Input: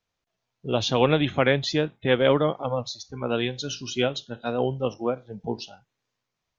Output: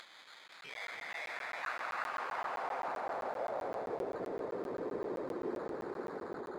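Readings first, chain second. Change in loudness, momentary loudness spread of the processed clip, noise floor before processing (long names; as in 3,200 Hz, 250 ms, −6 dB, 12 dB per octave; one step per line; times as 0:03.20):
−14.5 dB, 5 LU, −83 dBFS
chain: spectral tilt +4.5 dB per octave
phase shifter 0.32 Hz, delay 1.1 ms, feedback 58%
downward compressor, threshold −30 dBFS, peak gain reduction 16 dB
echo that builds up and dies away 84 ms, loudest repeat 5, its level −9.5 dB
hard clipping −28.5 dBFS, distortion −11 dB
high shelf with overshoot 2,600 Hz +10.5 dB, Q 3
brickwall limiter −36.5 dBFS, peak gain reduction 28 dB
sample-rate reduction 2,800 Hz, jitter 0%
band-pass filter sweep 3,000 Hz → 410 Hz, 0:00.38–0:04.13
upward compression, threshold −58 dBFS
delay with pitch and tempo change per echo 523 ms, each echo +2 semitones, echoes 3, each echo −6 dB
regular buffer underruns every 0.13 s, samples 512, zero, from 0:00.48
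level +11.5 dB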